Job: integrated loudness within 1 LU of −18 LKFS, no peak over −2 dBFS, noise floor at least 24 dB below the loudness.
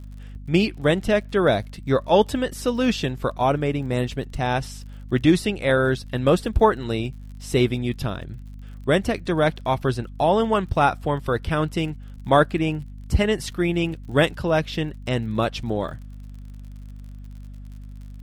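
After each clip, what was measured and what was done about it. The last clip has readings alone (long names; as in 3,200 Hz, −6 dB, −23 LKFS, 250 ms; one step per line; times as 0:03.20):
crackle rate 48 per second; mains hum 50 Hz; hum harmonics up to 250 Hz; level of the hum −36 dBFS; integrated loudness −22.5 LKFS; sample peak −3.5 dBFS; target loudness −18.0 LKFS
→ click removal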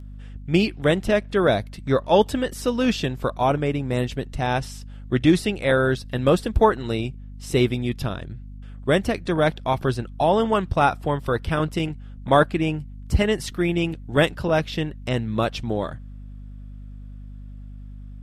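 crackle rate 0.055 per second; mains hum 50 Hz; hum harmonics up to 250 Hz; level of the hum −36 dBFS
→ hum removal 50 Hz, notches 5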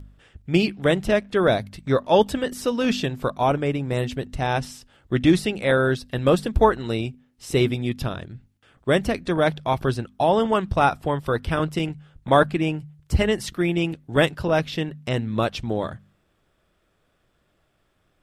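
mains hum none found; integrated loudness −23.0 LKFS; sample peak −3.5 dBFS; target loudness −18.0 LKFS
→ level +5 dB
brickwall limiter −2 dBFS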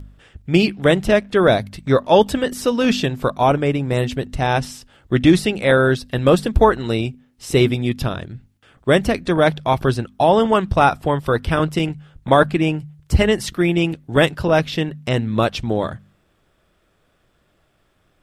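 integrated loudness −18.0 LKFS; sample peak −2.0 dBFS; background noise floor −63 dBFS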